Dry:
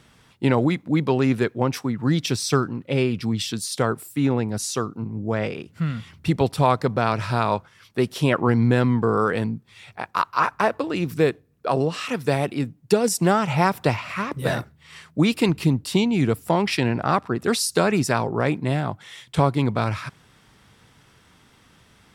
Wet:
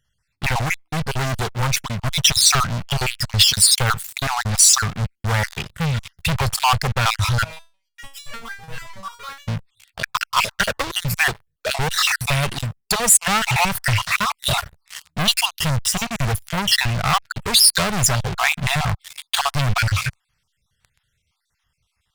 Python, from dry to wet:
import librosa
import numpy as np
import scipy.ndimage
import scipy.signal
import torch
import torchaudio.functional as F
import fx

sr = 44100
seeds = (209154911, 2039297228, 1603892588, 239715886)

y = fx.spec_dropout(x, sr, seeds[0], share_pct=49)
y = fx.rider(y, sr, range_db=4, speed_s=2.0)
y = fx.low_shelf(y, sr, hz=310.0, db=9.0)
y = fx.leveller(y, sr, passes=5)
y = fx.tone_stack(y, sr, knobs='10-0-10')
y = fx.resonator_held(y, sr, hz=6.7, low_hz=160.0, high_hz=570.0, at=(7.44, 9.48))